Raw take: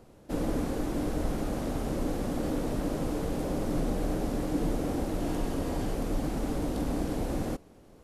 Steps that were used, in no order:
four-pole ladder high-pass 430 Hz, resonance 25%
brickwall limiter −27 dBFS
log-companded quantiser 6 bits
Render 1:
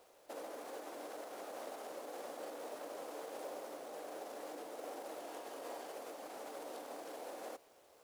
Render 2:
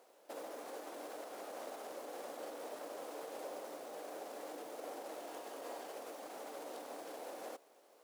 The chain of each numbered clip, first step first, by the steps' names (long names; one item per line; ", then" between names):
brickwall limiter, then four-pole ladder high-pass, then log-companded quantiser
brickwall limiter, then log-companded quantiser, then four-pole ladder high-pass